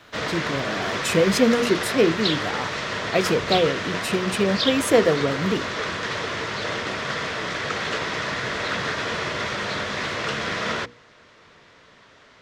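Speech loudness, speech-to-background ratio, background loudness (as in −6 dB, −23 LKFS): −23.0 LKFS, 3.0 dB, −26.0 LKFS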